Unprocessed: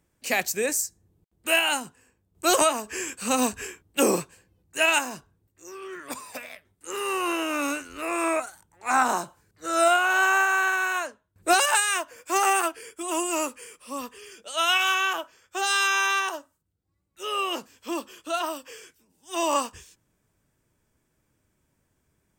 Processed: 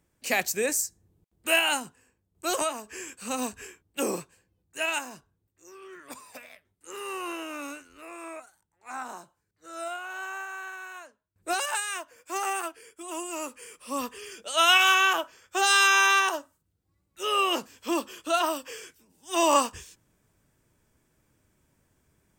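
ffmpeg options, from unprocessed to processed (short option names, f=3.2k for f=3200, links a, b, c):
-af "volume=17.5dB,afade=t=out:st=1.72:d=0.76:silence=0.473151,afade=t=out:st=7.2:d=0.98:silence=0.398107,afade=t=in:st=11.07:d=0.55:silence=0.421697,afade=t=in:st=13.4:d=0.61:silence=0.281838"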